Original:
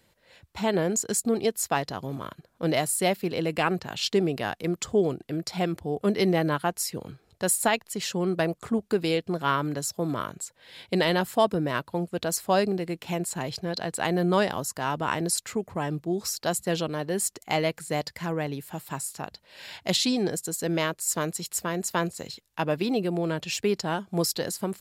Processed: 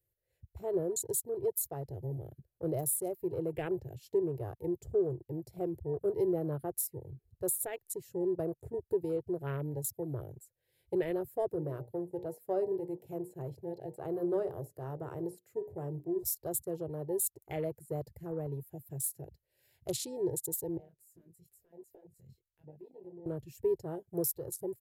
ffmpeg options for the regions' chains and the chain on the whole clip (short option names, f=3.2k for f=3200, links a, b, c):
-filter_complex "[0:a]asettb=1/sr,asplit=3[a][b][c];[a]atrim=end=11.514[d];[b]atrim=start=11.51:end=16.23,asetpts=PTS-STARTPTS,afade=t=in:d=0.004:c=qsin,afade=t=out:st=4.716:d=0.004:c=qsin,highpass=130,bandreject=f=60:t=h:w=6,bandreject=f=120:t=h:w=6,bandreject=f=180:t=h:w=6,bandreject=f=240:t=h:w=6,bandreject=f=300:t=h:w=6,bandreject=f=360:t=h:w=6,bandreject=f=420:t=h:w=6,bandreject=f=480:t=h:w=6,bandreject=f=540:t=h:w=6,bandreject=f=600:t=h:w=6,acrossover=split=3700[e][f];[f]acompressor=threshold=-40dB:ratio=4:attack=1:release=60[g];[e][g]amix=inputs=2:normalize=0[h];[c]atrim=start=16.226[i];[d][h]acrossfade=d=0.004:c1=hsin:c2=qsin[j];[j][i]acrossfade=d=0.004:c1=qsin:c2=hsin,asettb=1/sr,asplit=3[k][l][m];[k]atrim=end=20.774[n];[l]atrim=start=20.77:end=23.26,asetpts=PTS-STARTPTS,afade=t=in:d=0.004:c=qsin,afade=t=out:st=2.486:d=0.004:c=qsin,highshelf=f=5.2k:g=-8.5,acompressor=threshold=-38dB:ratio=6:attack=3.2:release=140:knee=1:detection=peak,flanger=delay=19:depth=4.2:speed=1[o];[m]atrim=start=23.256[p];[n][o]acrossfade=d=0.004:c1=hsin:c2=qsin[q];[q][p]acrossfade=d=0.004:c1=qsin:c2=hsin,firequalizer=gain_entry='entry(130,0);entry(210,-30);entry(360,-4);entry(1100,-28);entry(1700,-16);entry(3500,-21);entry(12000,5)':delay=0.05:min_phase=1,afwtdn=0.00501,alimiter=limit=-23.5dB:level=0:latency=1:release=375,volume=2dB"